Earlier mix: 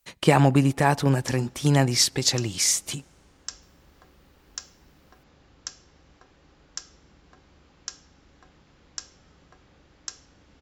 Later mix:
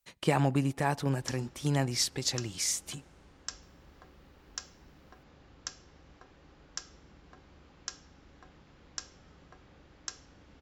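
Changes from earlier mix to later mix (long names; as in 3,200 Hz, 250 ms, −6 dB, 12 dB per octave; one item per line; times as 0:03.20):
speech −9.0 dB
background: add high-shelf EQ 4,800 Hz −7 dB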